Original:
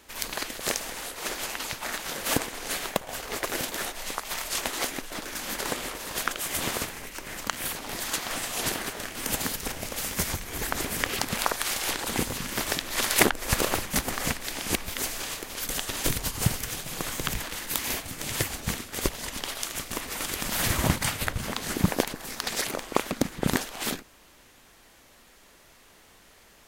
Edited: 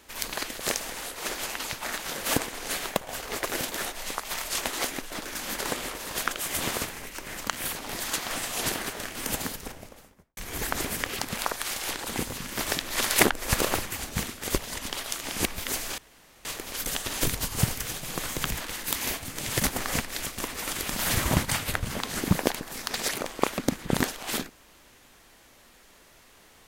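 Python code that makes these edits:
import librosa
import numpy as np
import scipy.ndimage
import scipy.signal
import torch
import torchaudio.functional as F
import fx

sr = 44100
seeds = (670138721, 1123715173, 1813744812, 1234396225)

y = fx.studio_fade_out(x, sr, start_s=9.15, length_s=1.22)
y = fx.edit(y, sr, fx.clip_gain(start_s=10.96, length_s=1.63, db=-3.0),
    fx.swap(start_s=13.92, length_s=0.62, other_s=18.43, other_length_s=1.32),
    fx.insert_room_tone(at_s=15.28, length_s=0.47), tone=tone)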